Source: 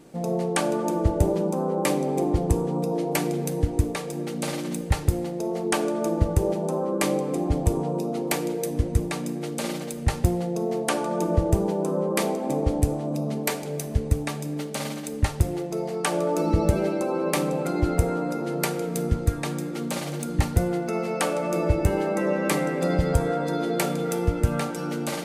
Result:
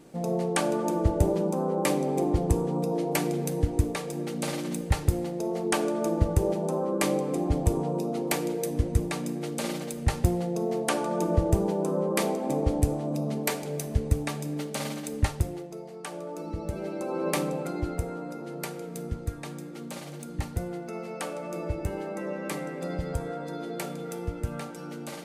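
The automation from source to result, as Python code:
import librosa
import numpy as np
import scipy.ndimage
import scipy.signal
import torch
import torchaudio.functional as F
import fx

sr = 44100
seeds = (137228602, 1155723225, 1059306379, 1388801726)

y = fx.gain(x, sr, db=fx.line((15.25, -2.0), (15.85, -13.0), (16.64, -13.0), (17.29, -2.5), (18.05, -9.5)))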